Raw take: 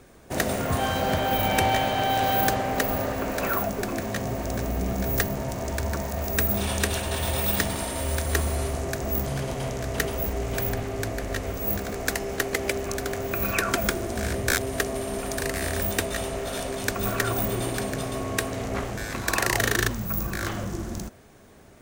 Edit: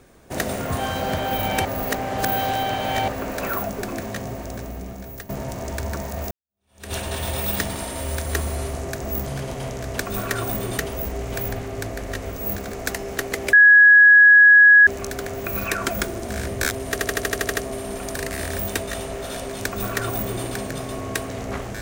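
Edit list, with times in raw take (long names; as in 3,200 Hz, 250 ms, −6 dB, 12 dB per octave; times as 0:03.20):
0:01.65–0:03.08: reverse
0:04.01–0:05.29: fade out, to −15.5 dB
0:06.31–0:06.93: fade in exponential
0:12.74: insert tone 1,670 Hz −7 dBFS 1.34 s
0:14.78: stutter 0.08 s, 9 plays
0:16.88–0:17.67: duplicate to 0:09.99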